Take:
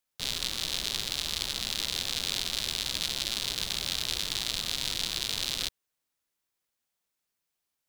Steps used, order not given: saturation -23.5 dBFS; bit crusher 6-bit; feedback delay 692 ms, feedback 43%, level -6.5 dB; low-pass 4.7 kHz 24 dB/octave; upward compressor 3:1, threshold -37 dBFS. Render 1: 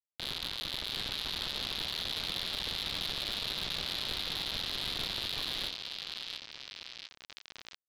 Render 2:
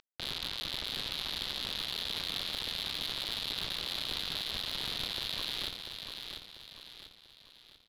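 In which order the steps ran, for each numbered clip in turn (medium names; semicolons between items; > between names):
feedback delay > bit crusher > low-pass > upward compressor > saturation; upward compressor > bit crusher > low-pass > saturation > feedback delay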